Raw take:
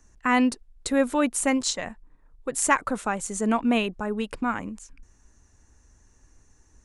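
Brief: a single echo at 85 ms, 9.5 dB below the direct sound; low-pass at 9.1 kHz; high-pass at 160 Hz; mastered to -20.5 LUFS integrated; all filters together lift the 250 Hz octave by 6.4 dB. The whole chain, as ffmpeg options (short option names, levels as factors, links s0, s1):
-af "highpass=160,lowpass=9100,equalizer=f=250:t=o:g=7.5,aecho=1:1:85:0.335,volume=1.12"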